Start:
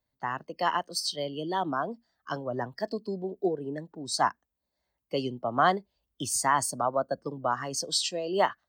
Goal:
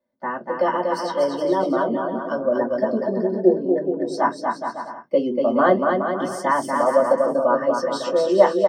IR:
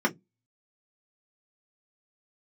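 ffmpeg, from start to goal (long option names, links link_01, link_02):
-filter_complex "[0:a]equalizer=frequency=510:width_type=o:width=0.85:gain=11.5,aecho=1:1:240|420|555|656.2|732.2:0.631|0.398|0.251|0.158|0.1[link_01];[1:a]atrim=start_sample=2205[link_02];[link_01][link_02]afir=irnorm=-1:irlink=0,volume=-11dB"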